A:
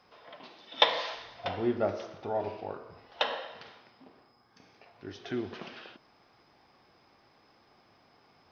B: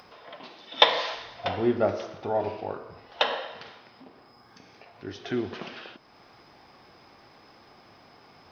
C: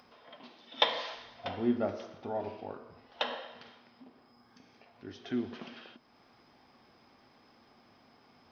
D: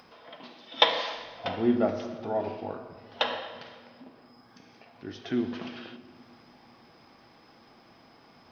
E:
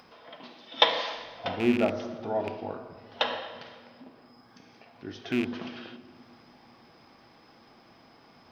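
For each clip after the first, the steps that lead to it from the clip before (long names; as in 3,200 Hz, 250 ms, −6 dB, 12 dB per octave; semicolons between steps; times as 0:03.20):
upward compression, threshold −52 dBFS; level +5 dB
hollow resonant body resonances 240/3,200 Hz, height 10 dB, ringing for 90 ms; level −9 dB
rectangular room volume 3,700 cubic metres, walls mixed, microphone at 0.67 metres; level +5.5 dB
loose part that buzzes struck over −32 dBFS, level −22 dBFS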